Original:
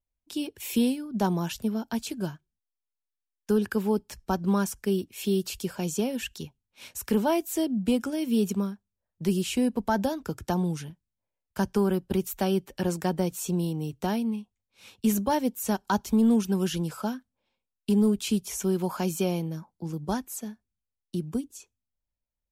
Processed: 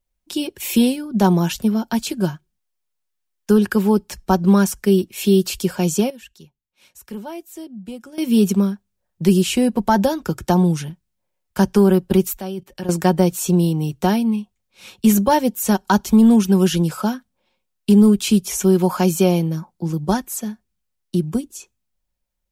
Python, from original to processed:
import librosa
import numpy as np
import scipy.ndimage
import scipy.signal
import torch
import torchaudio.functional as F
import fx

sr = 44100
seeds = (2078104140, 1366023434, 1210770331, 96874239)

y = fx.level_steps(x, sr, step_db=19, at=(12.37, 12.89))
y = fx.edit(y, sr, fx.fade_down_up(start_s=5.93, length_s=2.42, db=-17.0, fade_s=0.17, curve='log'), tone=tone)
y = y + 0.35 * np.pad(y, (int(5.5 * sr / 1000.0), 0))[:len(y)]
y = y * librosa.db_to_amplitude(9.0)